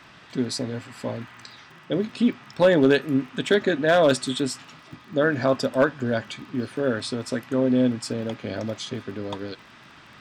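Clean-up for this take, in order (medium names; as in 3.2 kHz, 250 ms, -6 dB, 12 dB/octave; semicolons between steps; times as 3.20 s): clip repair -9 dBFS; de-click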